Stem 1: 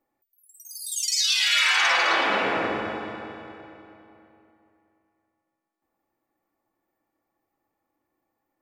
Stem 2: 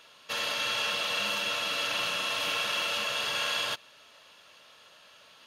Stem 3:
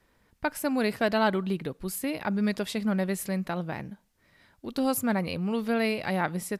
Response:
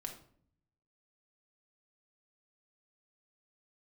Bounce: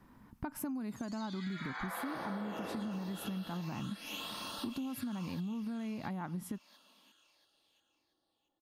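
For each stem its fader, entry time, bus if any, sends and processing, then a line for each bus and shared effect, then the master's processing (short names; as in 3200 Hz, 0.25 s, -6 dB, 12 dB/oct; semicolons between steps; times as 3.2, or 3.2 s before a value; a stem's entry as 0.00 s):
-4.5 dB, 0.00 s, no bus, no send, no echo send, running mean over 16 samples
-9.0 dB, 1.65 s, bus A, no send, echo send -12.5 dB, steep high-pass 180 Hz 72 dB/oct; high shelf 3900 Hz +10.5 dB; phaser stages 8, 0.44 Hz, lowest notch 290–2300 Hz
+2.5 dB, 0.00 s, bus A, no send, no echo send, compressor 3:1, threshold -33 dBFS, peak gain reduction 10.5 dB
bus A: 0.0 dB, graphic EQ 125/250/500/1000/2000/4000/8000 Hz +5/+12/-9/+8/-5/-5/-6 dB; limiter -21 dBFS, peak gain reduction 7.5 dB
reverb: off
echo: feedback echo 0.683 s, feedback 31%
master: compressor 12:1, threshold -36 dBFS, peak gain reduction 15 dB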